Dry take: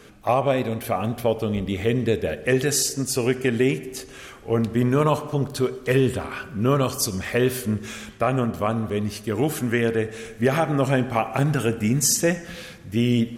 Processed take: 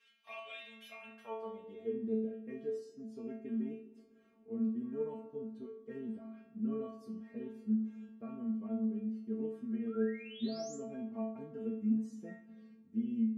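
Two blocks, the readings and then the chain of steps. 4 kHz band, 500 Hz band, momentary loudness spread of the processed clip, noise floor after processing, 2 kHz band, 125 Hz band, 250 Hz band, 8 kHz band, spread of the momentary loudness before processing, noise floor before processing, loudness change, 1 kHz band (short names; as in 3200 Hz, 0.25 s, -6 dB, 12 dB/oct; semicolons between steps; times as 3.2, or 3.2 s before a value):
under -20 dB, -18.5 dB, 14 LU, -63 dBFS, -25.5 dB, -26.5 dB, -12.0 dB, under -30 dB, 8 LU, -43 dBFS, -16.5 dB, -25.5 dB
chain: band-pass sweep 2800 Hz -> 270 Hz, 0.92–1.98; painted sound rise, 9.87–10.76, 1200–7700 Hz -42 dBFS; metallic resonator 220 Hz, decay 0.67 s, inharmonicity 0.002; gain +6.5 dB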